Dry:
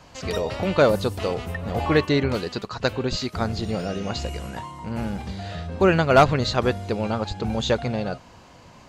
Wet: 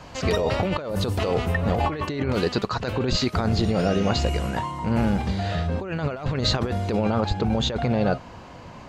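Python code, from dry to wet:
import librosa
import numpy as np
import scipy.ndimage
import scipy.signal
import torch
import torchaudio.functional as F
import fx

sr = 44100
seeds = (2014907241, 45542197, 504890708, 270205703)

y = fx.high_shelf(x, sr, hz=4300.0, db=fx.steps((0.0, -6.0), (6.96, -11.5)))
y = fx.over_compress(y, sr, threshold_db=-27.0, ratio=-1.0)
y = y * 10.0 ** (3.5 / 20.0)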